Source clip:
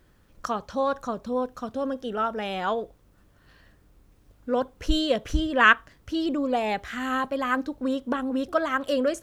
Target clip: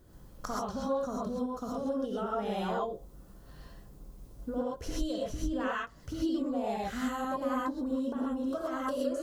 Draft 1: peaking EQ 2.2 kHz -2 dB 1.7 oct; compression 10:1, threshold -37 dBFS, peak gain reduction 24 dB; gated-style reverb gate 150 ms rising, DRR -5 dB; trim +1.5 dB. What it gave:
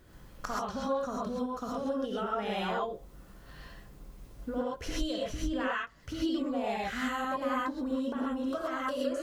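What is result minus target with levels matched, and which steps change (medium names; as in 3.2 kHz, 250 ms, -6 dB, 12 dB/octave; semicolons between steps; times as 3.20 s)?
2 kHz band +4.5 dB
change: peaking EQ 2.2 kHz -12.5 dB 1.7 oct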